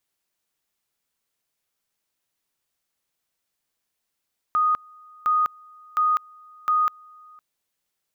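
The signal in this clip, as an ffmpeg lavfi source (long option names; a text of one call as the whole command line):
ffmpeg -f lavfi -i "aevalsrc='pow(10,(-17-28*gte(mod(t,0.71),0.2))/20)*sin(2*PI*1240*t)':duration=2.84:sample_rate=44100" out.wav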